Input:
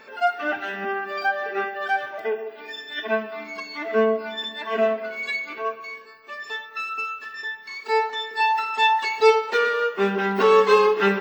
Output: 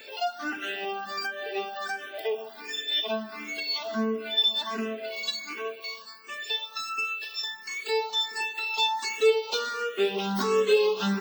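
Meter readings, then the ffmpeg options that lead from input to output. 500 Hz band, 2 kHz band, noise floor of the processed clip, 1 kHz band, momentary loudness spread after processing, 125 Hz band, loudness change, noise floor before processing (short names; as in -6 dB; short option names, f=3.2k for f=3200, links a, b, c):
-6.0 dB, -7.0 dB, -45 dBFS, -10.0 dB, 11 LU, n/a, -5.0 dB, -43 dBFS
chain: -filter_complex "[0:a]acrossover=split=430[a][b];[b]acompressor=threshold=-31dB:ratio=2.5[c];[a][c]amix=inputs=2:normalize=0,aexciter=amount=4.3:drive=5.8:freq=2.8k,asplit=2[d][e];[e]afreqshift=1.4[f];[d][f]amix=inputs=2:normalize=1"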